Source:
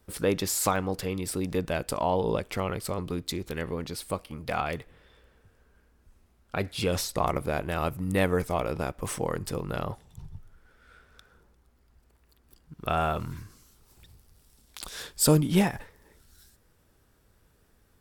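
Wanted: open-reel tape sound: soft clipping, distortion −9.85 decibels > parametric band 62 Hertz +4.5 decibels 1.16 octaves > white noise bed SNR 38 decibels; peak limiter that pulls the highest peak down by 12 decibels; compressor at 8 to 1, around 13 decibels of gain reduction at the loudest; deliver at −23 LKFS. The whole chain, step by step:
downward compressor 8 to 1, threshold −29 dBFS
brickwall limiter −26 dBFS
soft clipping −36 dBFS
parametric band 62 Hz +4.5 dB 1.16 octaves
white noise bed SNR 38 dB
level +18.5 dB

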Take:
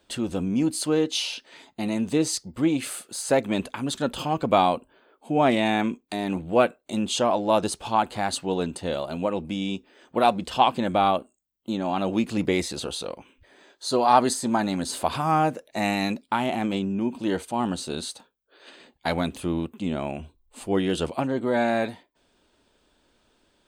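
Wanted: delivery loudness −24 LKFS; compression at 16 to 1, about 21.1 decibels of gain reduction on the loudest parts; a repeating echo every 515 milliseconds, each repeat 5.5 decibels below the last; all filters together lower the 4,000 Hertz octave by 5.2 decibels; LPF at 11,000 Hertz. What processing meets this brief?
low-pass filter 11,000 Hz
parametric band 4,000 Hz −6.5 dB
downward compressor 16 to 1, threshold −35 dBFS
repeating echo 515 ms, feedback 53%, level −5.5 dB
level +15 dB

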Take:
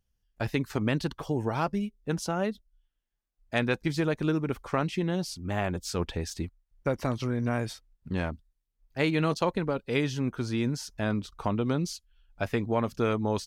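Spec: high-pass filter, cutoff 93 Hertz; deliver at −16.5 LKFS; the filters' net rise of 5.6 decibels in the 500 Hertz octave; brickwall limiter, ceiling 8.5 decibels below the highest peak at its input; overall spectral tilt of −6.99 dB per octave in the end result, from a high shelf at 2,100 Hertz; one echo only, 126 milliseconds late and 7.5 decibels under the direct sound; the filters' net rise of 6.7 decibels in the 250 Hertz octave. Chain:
high-pass filter 93 Hz
parametric band 250 Hz +7.5 dB
parametric band 500 Hz +5 dB
high-shelf EQ 2,100 Hz −7.5 dB
brickwall limiter −17.5 dBFS
single-tap delay 126 ms −7.5 dB
level +11.5 dB

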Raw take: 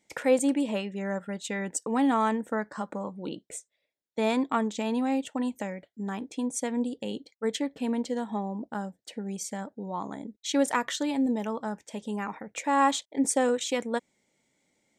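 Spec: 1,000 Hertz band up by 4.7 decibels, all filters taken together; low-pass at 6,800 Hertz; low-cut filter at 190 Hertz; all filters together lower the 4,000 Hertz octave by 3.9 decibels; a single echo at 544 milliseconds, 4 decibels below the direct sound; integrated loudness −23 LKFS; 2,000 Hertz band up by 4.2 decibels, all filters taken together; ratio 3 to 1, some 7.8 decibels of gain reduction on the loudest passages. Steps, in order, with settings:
high-pass filter 190 Hz
low-pass filter 6,800 Hz
parametric band 1,000 Hz +5 dB
parametric band 2,000 Hz +5 dB
parametric band 4,000 Hz −7 dB
downward compressor 3 to 1, threshold −25 dBFS
single-tap delay 544 ms −4 dB
level +8 dB

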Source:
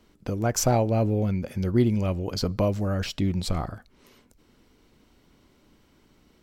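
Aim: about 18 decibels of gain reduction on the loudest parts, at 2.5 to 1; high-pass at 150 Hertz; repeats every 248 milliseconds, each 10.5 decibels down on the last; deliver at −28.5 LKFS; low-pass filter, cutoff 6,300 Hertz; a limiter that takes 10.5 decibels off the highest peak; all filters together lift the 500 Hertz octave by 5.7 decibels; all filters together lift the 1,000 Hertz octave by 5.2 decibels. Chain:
high-pass filter 150 Hz
low-pass filter 6,300 Hz
parametric band 500 Hz +6 dB
parametric band 1,000 Hz +4.5 dB
downward compressor 2.5 to 1, threshold −42 dBFS
brickwall limiter −30.5 dBFS
repeating echo 248 ms, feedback 30%, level −10.5 dB
level +12.5 dB

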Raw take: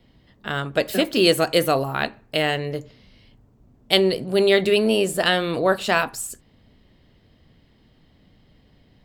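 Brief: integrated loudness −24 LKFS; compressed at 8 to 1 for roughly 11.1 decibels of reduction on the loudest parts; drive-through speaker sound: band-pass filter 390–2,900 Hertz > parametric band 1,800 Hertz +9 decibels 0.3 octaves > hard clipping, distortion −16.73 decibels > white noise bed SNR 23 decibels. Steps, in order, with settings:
downward compressor 8 to 1, threshold −24 dBFS
band-pass filter 390–2,900 Hz
parametric band 1,800 Hz +9 dB 0.3 octaves
hard clipping −19 dBFS
white noise bed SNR 23 dB
level +6.5 dB

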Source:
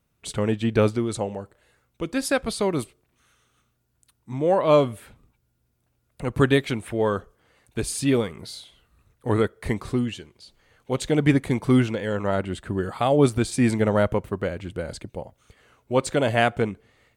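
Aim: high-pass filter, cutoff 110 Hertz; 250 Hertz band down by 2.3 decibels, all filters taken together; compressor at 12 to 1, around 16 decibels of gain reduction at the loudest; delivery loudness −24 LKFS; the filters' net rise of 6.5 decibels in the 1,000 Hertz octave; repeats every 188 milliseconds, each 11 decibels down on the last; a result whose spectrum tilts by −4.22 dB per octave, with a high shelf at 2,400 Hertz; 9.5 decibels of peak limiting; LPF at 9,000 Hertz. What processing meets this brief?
high-pass filter 110 Hz
low-pass filter 9,000 Hz
parametric band 250 Hz −3 dB
parametric band 1,000 Hz +8 dB
high-shelf EQ 2,400 Hz +4 dB
downward compressor 12 to 1, threshold −25 dBFS
brickwall limiter −20 dBFS
repeating echo 188 ms, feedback 28%, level −11 dB
level +9 dB

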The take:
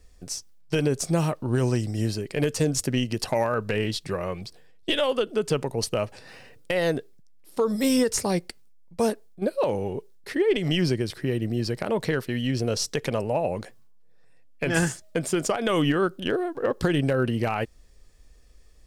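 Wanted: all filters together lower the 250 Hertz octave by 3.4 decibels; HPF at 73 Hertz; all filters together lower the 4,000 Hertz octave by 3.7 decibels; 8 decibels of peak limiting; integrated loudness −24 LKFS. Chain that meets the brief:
high-pass filter 73 Hz
parametric band 250 Hz −4.5 dB
parametric band 4,000 Hz −5.5 dB
level +6.5 dB
brickwall limiter −12.5 dBFS

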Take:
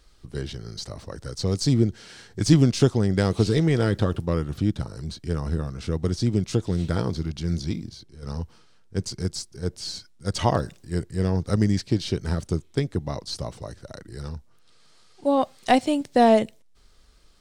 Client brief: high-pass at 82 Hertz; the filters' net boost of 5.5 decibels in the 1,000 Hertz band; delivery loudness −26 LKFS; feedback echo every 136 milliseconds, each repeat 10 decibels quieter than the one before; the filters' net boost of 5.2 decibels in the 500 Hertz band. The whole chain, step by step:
high-pass filter 82 Hz
parametric band 500 Hz +5 dB
parametric band 1,000 Hz +5.5 dB
repeating echo 136 ms, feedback 32%, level −10 dB
level −4 dB

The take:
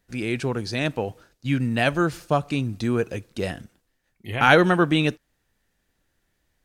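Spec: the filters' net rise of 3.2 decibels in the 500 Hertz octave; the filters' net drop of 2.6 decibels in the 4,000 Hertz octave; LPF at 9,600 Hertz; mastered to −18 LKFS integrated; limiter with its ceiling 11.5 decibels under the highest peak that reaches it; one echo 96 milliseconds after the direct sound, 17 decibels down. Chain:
low-pass filter 9,600 Hz
parametric band 500 Hz +4 dB
parametric band 4,000 Hz −3.5 dB
brickwall limiter −13.5 dBFS
single-tap delay 96 ms −17 dB
level +7.5 dB

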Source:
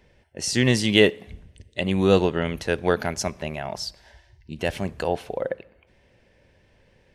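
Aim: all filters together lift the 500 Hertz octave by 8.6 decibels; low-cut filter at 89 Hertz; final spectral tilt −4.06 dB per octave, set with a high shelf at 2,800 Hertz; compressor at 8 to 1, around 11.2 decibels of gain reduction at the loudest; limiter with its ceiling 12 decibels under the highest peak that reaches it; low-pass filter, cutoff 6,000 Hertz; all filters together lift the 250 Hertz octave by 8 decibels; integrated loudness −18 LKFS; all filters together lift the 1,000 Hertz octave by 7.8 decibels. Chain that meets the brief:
high-pass filter 89 Hz
low-pass filter 6,000 Hz
parametric band 250 Hz +8.5 dB
parametric band 500 Hz +6 dB
parametric band 1,000 Hz +6.5 dB
high-shelf EQ 2,800 Hz +8.5 dB
downward compressor 8 to 1, threshold −15 dBFS
level +9 dB
brickwall limiter −5 dBFS

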